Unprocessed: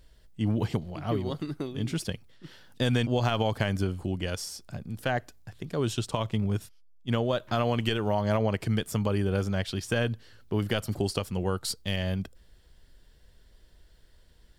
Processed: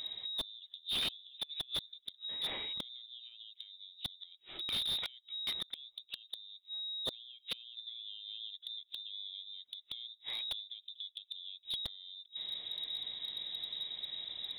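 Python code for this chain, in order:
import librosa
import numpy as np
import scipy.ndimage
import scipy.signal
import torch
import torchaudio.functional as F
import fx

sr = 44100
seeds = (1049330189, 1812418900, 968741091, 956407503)

y = fx.env_lowpass_down(x, sr, base_hz=700.0, full_db=-27.5)
y = fx.peak_eq(y, sr, hz=290.0, db=fx.steps((0.0, 5.0), (7.77, 14.5)), octaves=1.8)
y = fx.gate_flip(y, sr, shuts_db=-20.0, range_db=-38)
y = fx.freq_invert(y, sr, carrier_hz=3800)
y = fx.slew_limit(y, sr, full_power_hz=25.0)
y = y * 10.0 ** (10.0 / 20.0)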